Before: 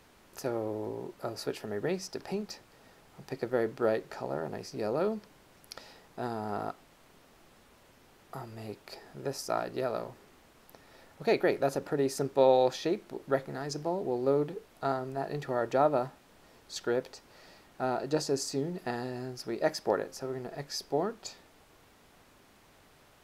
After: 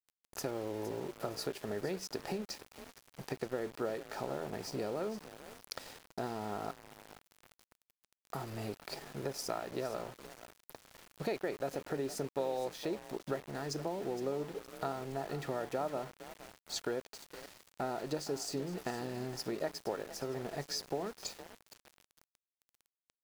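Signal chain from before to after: compressor 4:1, threshold -39 dBFS, peak gain reduction 17.5 dB; frequency-shifting echo 0.464 s, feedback 39%, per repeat +37 Hz, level -14 dB; sample gate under -49.5 dBFS; gain +3.5 dB

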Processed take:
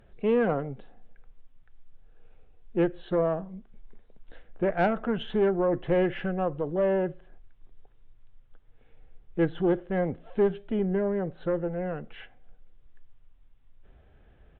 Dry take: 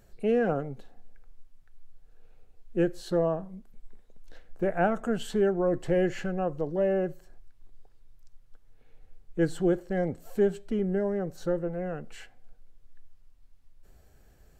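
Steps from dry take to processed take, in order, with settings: downsampling 8000 Hz; tube stage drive 17 dB, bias 0.35; gain +3 dB

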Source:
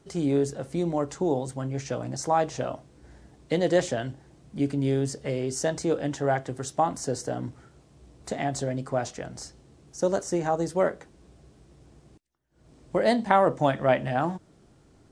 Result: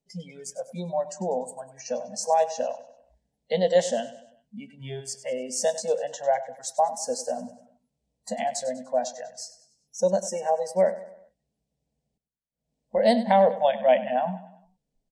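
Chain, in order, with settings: fixed phaser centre 340 Hz, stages 6; spectral noise reduction 26 dB; feedback echo 98 ms, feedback 46%, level -15 dB; gain +4 dB

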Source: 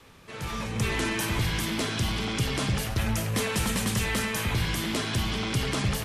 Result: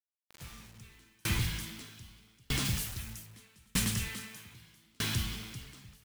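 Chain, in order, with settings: bell 610 Hz -14.5 dB 1.8 oct; requantised 6-bit, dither none; 2.65–3.26 high shelf 5000 Hz +8 dB; 4.08–4.84 HPF 110 Hz 12 dB/oct; dB-ramp tremolo decaying 0.8 Hz, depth 39 dB; gain +2 dB

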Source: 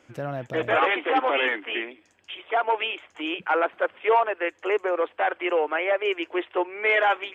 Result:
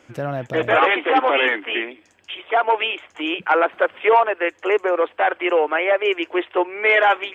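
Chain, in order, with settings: 3.51–4.13 three-band squash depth 70%; gain +5.5 dB

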